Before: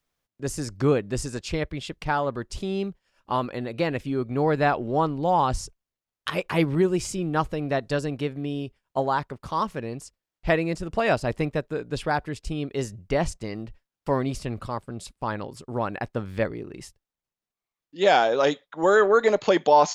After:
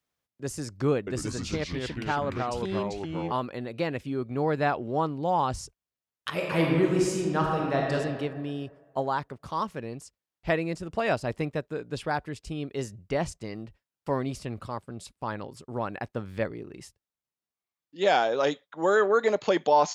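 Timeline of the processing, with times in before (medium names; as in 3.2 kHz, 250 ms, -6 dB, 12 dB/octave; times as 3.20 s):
0.97–3.32 s: ever faster or slower copies 99 ms, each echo -3 st, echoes 3
6.30–7.94 s: reverb throw, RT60 1.8 s, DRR -1.5 dB
whole clip: high-pass 60 Hz; trim -4 dB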